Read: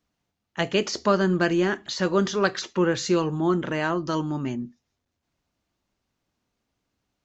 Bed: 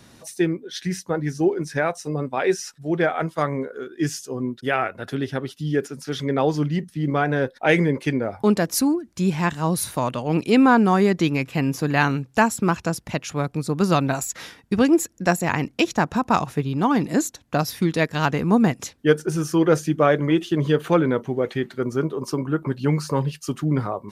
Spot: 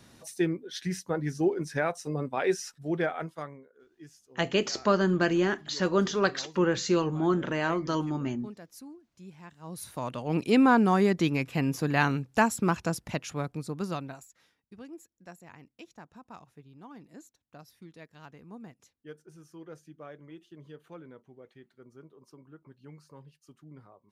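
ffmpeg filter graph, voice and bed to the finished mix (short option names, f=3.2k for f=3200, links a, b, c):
-filter_complex "[0:a]adelay=3800,volume=-3dB[a];[1:a]volume=15dB,afade=t=out:st=2.85:d=0.76:silence=0.0944061,afade=t=in:st=9.59:d=0.89:silence=0.0891251,afade=t=out:st=13.03:d=1.27:silence=0.0707946[b];[a][b]amix=inputs=2:normalize=0"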